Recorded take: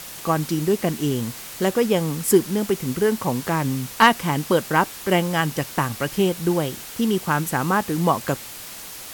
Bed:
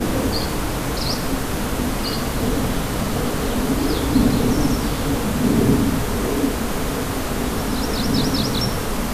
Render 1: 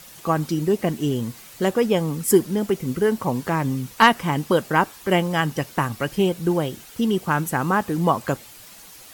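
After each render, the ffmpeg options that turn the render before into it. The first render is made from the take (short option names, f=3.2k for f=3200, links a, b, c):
-af "afftdn=nr=9:nf=-37"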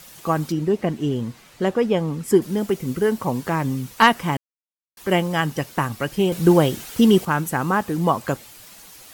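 -filter_complex "[0:a]asettb=1/sr,asplit=3[a][b][c];[a]atrim=end=0.524[d];[b]atrim=start=0.52:end=2.42,asetpts=PTS-STARTPTS,afade=t=in:d=0.004:c=qsin,afade=t=out:st=1.896:d=0.004:c=qsin,aemphasis=mode=reproduction:type=50kf[e];[c]atrim=start=2.416[f];[d][e]acrossfade=d=0.004:c1=hsin:c2=qsin[g];[g][f]acrossfade=d=0.004:c1=qsin:c2=hsin,asplit=5[h][i][j][k][l];[h]atrim=end=4.37,asetpts=PTS-STARTPTS,afade=t=out:st=4.366:d=0.004:c=hsin[m];[i]atrim=start=4.37:end=4.97,asetpts=PTS-STARTPTS,volume=0[n];[j]atrim=start=4.97:end=6.322,asetpts=PTS-STARTPTS,afade=t=in:d=0.004:c=hsin[o];[k]atrim=start=6.318:end=7.252,asetpts=PTS-STARTPTS,volume=7dB[p];[l]atrim=start=7.248[q];[m][n][o]concat=n=3:v=0:a=1[r];[r][p]acrossfade=d=0.004:c1=hsin:c2=hsin[s];[s][q]acrossfade=d=0.004:c1=hsin:c2=hsin"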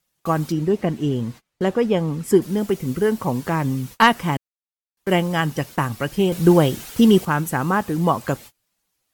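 -af "agate=range=-30dB:threshold=-37dB:ratio=16:detection=peak,lowshelf=f=160:g=3.5"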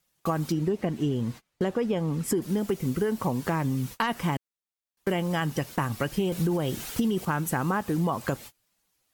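-af "alimiter=limit=-10.5dB:level=0:latency=1:release=13,acompressor=threshold=-23dB:ratio=6"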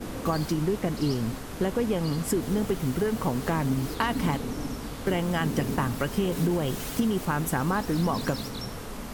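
-filter_complex "[1:a]volume=-14.5dB[a];[0:a][a]amix=inputs=2:normalize=0"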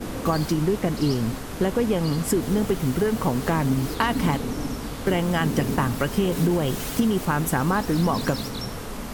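-af "volume=4dB"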